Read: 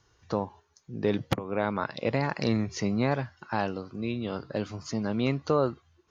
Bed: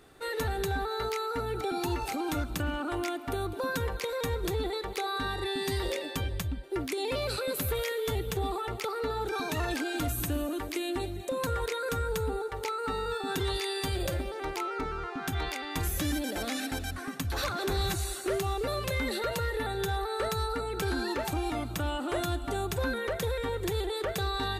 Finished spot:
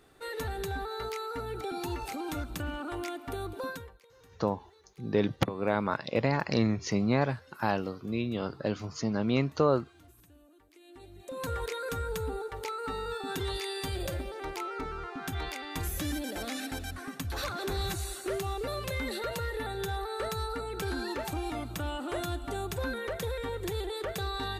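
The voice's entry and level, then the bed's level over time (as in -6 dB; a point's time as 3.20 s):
4.10 s, 0.0 dB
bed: 3.68 s -4 dB
4.02 s -27.5 dB
10.70 s -27.5 dB
11.48 s -3 dB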